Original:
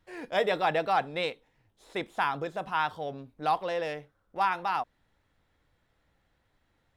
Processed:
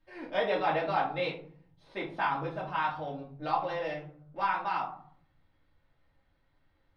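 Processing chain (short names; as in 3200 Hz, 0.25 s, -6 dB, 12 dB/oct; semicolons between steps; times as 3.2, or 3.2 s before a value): polynomial smoothing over 15 samples; reverb RT60 0.55 s, pre-delay 3 ms, DRR -5.5 dB; gain -8.5 dB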